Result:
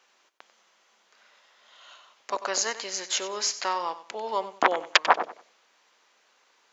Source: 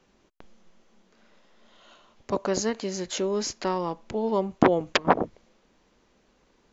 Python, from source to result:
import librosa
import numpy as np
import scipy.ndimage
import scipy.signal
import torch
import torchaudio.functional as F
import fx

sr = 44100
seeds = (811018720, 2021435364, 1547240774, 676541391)

p1 = scipy.signal.sosfilt(scipy.signal.butter(2, 960.0, 'highpass', fs=sr, output='sos'), x)
p2 = p1 + fx.echo_feedback(p1, sr, ms=94, feedback_pct=25, wet_db=-14.0, dry=0)
y = F.gain(torch.from_numpy(p2), 5.5).numpy()